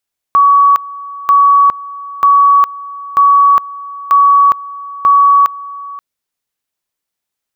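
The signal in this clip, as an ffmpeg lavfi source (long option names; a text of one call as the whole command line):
ffmpeg -f lavfi -i "aevalsrc='pow(10,(-4-19.5*gte(mod(t,0.94),0.41))/20)*sin(2*PI*1130*t)':duration=5.64:sample_rate=44100" out.wav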